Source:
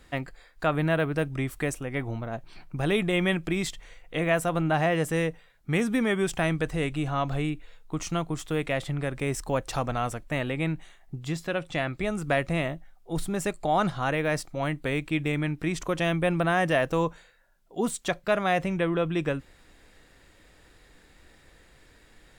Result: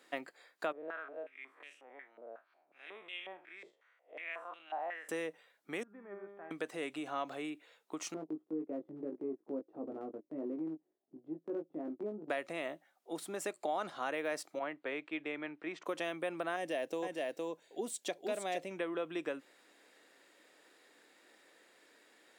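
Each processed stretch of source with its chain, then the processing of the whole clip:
0.72–5.09 s: spectral blur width 96 ms + step-sequenced band-pass 5.5 Hz 500–2900 Hz
5.83–6.51 s: low-pass 1.6 kHz 24 dB/octave + feedback comb 200 Hz, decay 1.5 s, mix 90%
8.14–12.30 s: resonant low-pass 330 Hz, resonance Q 2.1 + transient shaper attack -7 dB, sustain -11 dB + doubling 19 ms -4 dB
14.59–15.86 s: low-pass 3 kHz + peaking EQ 190 Hz -4.5 dB 2 oct + three bands expanded up and down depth 70%
16.56–18.71 s: peaking EQ 1.3 kHz -12.5 dB 0.98 oct + delay 463 ms -4.5 dB
whole clip: compression, threshold -27 dBFS; high-pass 280 Hz 24 dB/octave; peaking EQ 600 Hz +2 dB 0.22 oct; trim -5.5 dB

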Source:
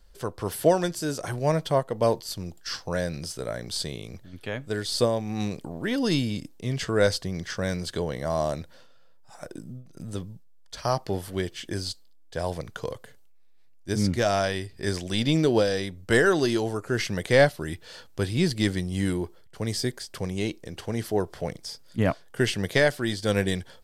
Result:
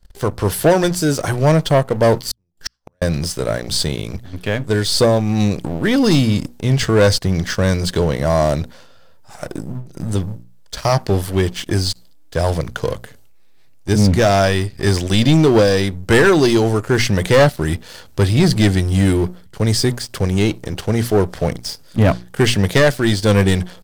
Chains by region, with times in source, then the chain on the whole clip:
2.31–3.02 s: waveshaping leveller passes 1 + inverted gate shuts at -22 dBFS, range -37 dB
whole clip: bass shelf 140 Hz +7.5 dB; hum notches 60/120/180/240 Hz; waveshaping leveller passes 3

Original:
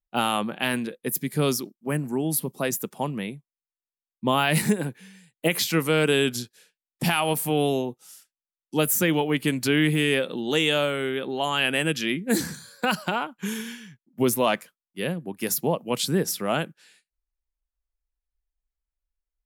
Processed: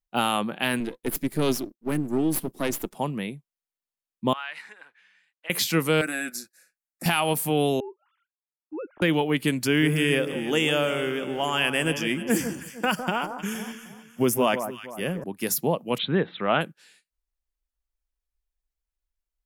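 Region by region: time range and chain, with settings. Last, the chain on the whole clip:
0.80–2.95 s: partial rectifier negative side -12 dB + peaking EQ 310 Hz +9 dB 0.71 oct
4.33–5.50 s: companding laws mixed up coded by mu + ladder band-pass 1.8 kHz, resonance 25%
6.01–7.06 s: bass shelf 350 Hz -10 dB + static phaser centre 640 Hz, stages 8 + comb 6 ms, depth 36%
7.80–9.02 s: formants replaced by sine waves + low-pass 1.3 kHz + compression 2.5:1, threshold -38 dBFS
9.65–15.24 s: companding laws mixed up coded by A + Butterworth band-stop 4 kHz, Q 3 + echo whose repeats swap between lows and highs 155 ms, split 1.3 kHz, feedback 59%, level -8 dB
15.98–16.61 s: Chebyshev low-pass 3.9 kHz, order 8 + peaking EQ 1.4 kHz +5.5 dB 1.9 oct
whole clip: none

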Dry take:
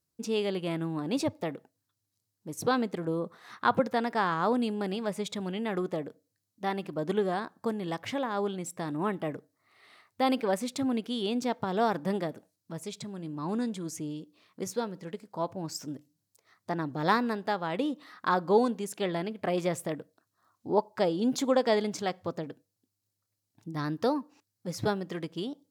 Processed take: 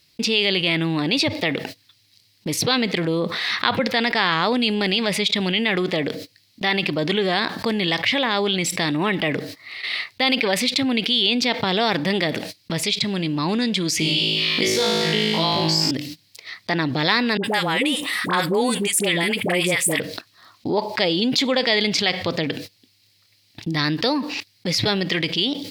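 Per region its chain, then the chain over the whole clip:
13.99–15.91 s: flutter echo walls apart 3.2 m, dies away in 1.1 s + three bands compressed up and down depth 70%
17.37–20.00 s: resonant high shelf 6.5 kHz +12.5 dB, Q 3 + band-stop 660 Hz, Q 11 + phase dispersion highs, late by 68 ms, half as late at 740 Hz
whole clip: gate -57 dBFS, range -23 dB; high-order bell 3.1 kHz +16 dB; level flattener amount 70%

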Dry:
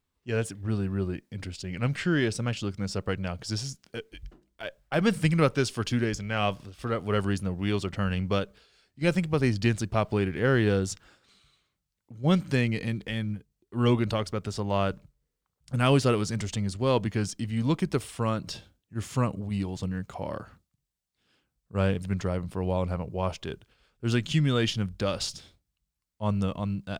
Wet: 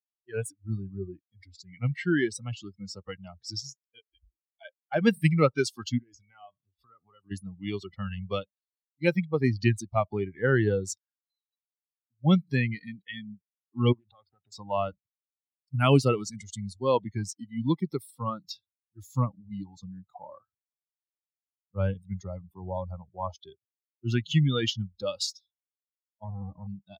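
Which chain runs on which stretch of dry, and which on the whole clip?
5.98–7.31 s: treble shelf 5.8 kHz -3.5 dB + compression 8:1, threshold -33 dBFS
13.92–14.52 s: low-pass 3.3 kHz 24 dB/octave + compression 12:1, threshold -33 dBFS + loudspeaker Doppler distortion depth 0.39 ms
26.24–26.67 s: square wave that keeps the level + compression 3:1, threshold -28 dBFS + low-pass 1.1 kHz
whole clip: expander on every frequency bin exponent 2; spectral noise reduction 16 dB; high-pass 93 Hz 24 dB/octave; trim +4.5 dB

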